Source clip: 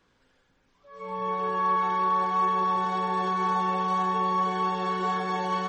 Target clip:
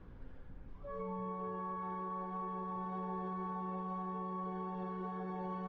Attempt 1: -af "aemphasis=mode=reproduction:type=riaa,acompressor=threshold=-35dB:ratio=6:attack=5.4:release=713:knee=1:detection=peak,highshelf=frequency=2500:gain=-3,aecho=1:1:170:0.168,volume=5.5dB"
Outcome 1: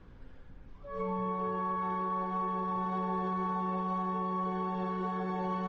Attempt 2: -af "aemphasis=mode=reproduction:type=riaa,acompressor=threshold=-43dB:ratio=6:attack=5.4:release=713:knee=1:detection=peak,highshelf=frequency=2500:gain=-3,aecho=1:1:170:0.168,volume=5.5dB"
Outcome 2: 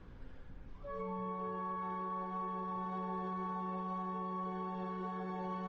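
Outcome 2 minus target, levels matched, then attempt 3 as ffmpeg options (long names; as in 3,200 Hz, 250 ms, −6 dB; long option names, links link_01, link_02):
4,000 Hz band +5.0 dB
-af "aemphasis=mode=reproduction:type=riaa,acompressor=threshold=-43dB:ratio=6:attack=5.4:release=713:knee=1:detection=peak,highshelf=frequency=2500:gain=-12.5,aecho=1:1:170:0.168,volume=5.5dB"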